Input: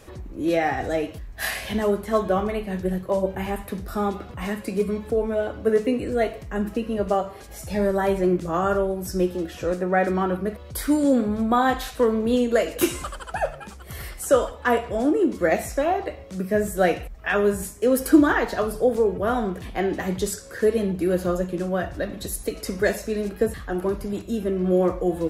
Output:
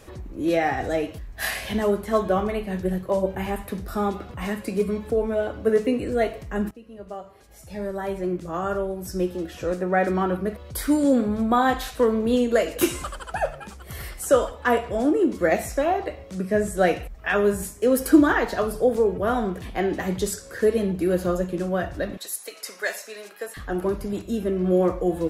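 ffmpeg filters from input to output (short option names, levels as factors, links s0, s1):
-filter_complex "[0:a]asettb=1/sr,asplit=3[s0][s1][s2];[s0]atrim=end=16.354[s3];[s1]atrim=start=16.35:end=16.87,asetpts=PTS-STARTPTS,afade=t=in:d=0.004:c=qsin,afade=t=out:st=0.516:d=0.004:c=qsin,lowpass=f=11000:w=0.5412,lowpass=f=11000:w=1.3066[s4];[s2]atrim=start=16.866[s5];[s3][s4]acrossfade=d=0.004:c1=hsin:c2=qsin[s6];[s6][s5]acrossfade=d=0.004:c1=qsin:c2=hsin,asettb=1/sr,asplit=3[s7][s8][s9];[s7]atrim=end=22.174[s10];[s8]atrim=start=22.17:end=23.57,asetpts=PTS-STARTPTS,afade=t=in:d=0.004:c=qsin,afade=t=out:st=1.396:d=0.004:c=qsin,highpass=890[s11];[s9]atrim=start=23.566[s12];[s10][s11]acrossfade=d=0.004:c1=hsin:c2=qsin[s13];[s13][s12]acrossfade=d=0.004:c1=qsin:c2=hsin,asplit=2[s14][s15];[s14]atrim=end=6.71,asetpts=PTS-STARTPTS,afade=t=out:st=6.706:d=0.004:c=hsin:silence=0.0944061[s16];[s15]atrim=start=6.71,asetpts=PTS-STARTPTS,afade=t=in:d=3.48:silence=0.0944061[s17];[s16][s17]concat=n=2:v=0:a=1"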